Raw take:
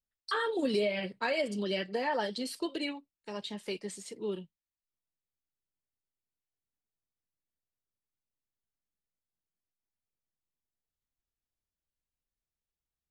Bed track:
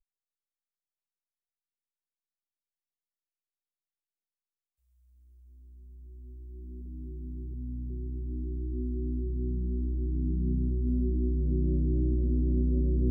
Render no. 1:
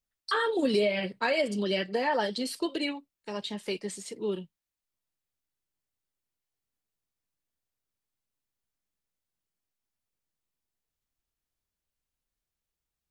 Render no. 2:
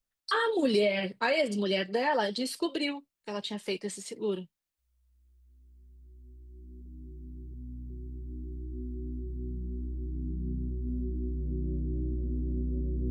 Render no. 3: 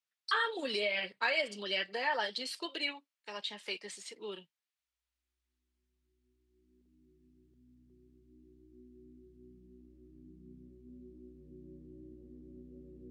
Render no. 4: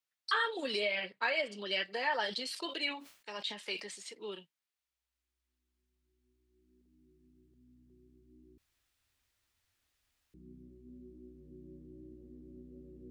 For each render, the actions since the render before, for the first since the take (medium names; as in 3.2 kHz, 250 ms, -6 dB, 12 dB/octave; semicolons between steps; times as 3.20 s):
trim +4 dB
add bed track -5.5 dB
band-pass filter 2.5 kHz, Q 0.61
0.95–1.71 s: treble shelf 4.4 kHz -7.5 dB; 2.21–3.84 s: decay stretcher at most 110 dB/s; 8.58–10.34 s: room tone